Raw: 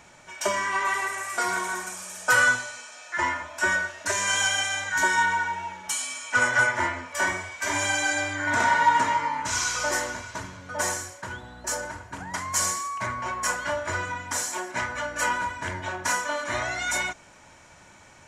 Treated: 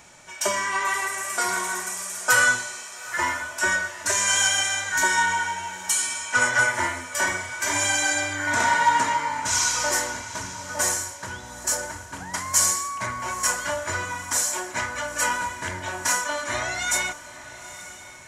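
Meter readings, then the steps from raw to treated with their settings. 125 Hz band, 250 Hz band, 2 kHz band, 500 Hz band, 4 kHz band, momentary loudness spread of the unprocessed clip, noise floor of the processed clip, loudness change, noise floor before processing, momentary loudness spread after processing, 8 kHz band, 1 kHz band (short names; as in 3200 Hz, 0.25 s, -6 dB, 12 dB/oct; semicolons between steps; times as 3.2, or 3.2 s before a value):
0.0 dB, 0.0 dB, +1.0 dB, +0.5 dB, +3.5 dB, 12 LU, -42 dBFS, +2.5 dB, -52 dBFS, 13 LU, +6.5 dB, +0.5 dB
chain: high shelf 5000 Hz +9 dB; on a send: diffused feedback echo 0.891 s, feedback 43%, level -15 dB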